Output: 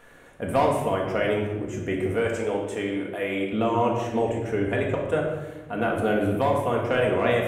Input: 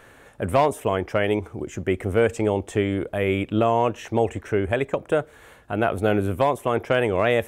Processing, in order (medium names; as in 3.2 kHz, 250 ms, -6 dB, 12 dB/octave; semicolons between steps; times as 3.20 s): 2.12–3.53 s: high-pass 410 Hz 6 dB/octave; simulated room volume 620 m³, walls mixed, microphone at 1.8 m; trim -5.5 dB